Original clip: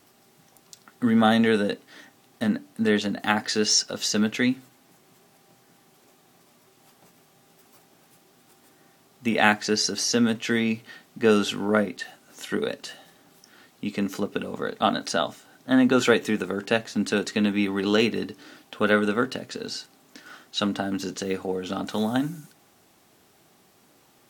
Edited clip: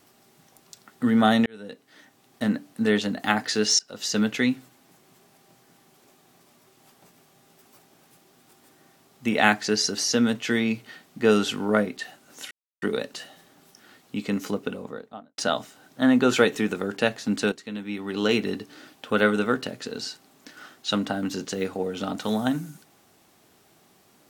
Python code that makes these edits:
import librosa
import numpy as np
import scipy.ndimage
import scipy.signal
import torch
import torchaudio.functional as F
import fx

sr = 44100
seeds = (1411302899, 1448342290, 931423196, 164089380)

y = fx.studio_fade_out(x, sr, start_s=14.17, length_s=0.9)
y = fx.edit(y, sr, fx.fade_in_span(start_s=1.46, length_s=0.99),
    fx.fade_in_from(start_s=3.79, length_s=0.39, floor_db=-22.5),
    fx.insert_silence(at_s=12.51, length_s=0.31),
    fx.fade_in_from(start_s=17.21, length_s=0.88, curve='qua', floor_db=-13.0), tone=tone)